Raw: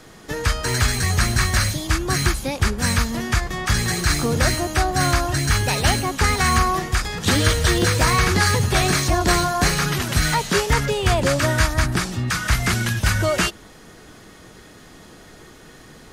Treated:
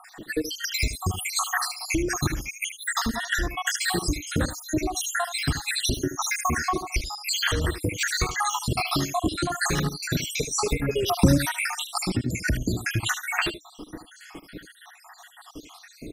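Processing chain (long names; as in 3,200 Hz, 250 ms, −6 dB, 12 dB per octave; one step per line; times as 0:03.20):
time-frequency cells dropped at random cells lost 79%
parametric band 300 Hz +12.5 dB 0.36 octaves
downward compressor 10 to 1, threshold −27 dBFS, peak gain reduction 15 dB
0:11.08–0:11.49: bass and treble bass +14 dB, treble +11 dB
single-tap delay 76 ms −11.5 dB
level +5.5 dB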